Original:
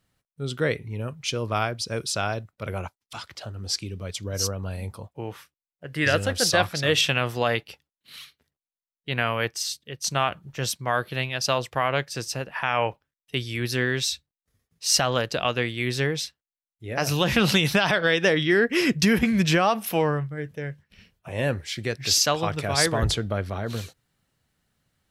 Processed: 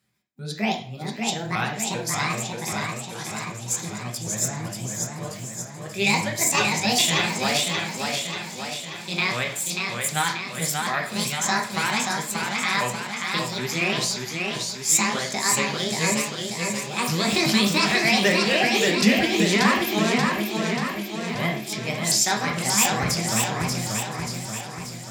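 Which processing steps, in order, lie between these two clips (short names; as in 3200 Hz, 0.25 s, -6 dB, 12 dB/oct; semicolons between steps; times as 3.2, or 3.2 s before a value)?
repeated pitch sweeps +9.5 st, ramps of 0.388 s; thin delay 0.509 s, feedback 65%, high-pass 3800 Hz, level -14.5 dB; reverb RT60 0.50 s, pre-delay 3 ms, DRR 1.5 dB; warbling echo 0.584 s, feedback 58%, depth 85 cents, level -4 dB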